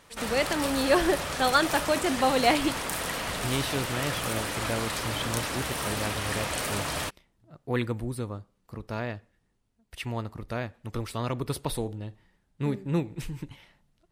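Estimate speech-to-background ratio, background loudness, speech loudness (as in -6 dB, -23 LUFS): 1.0 dB, -31.0 LUFS, -30.0 LUFS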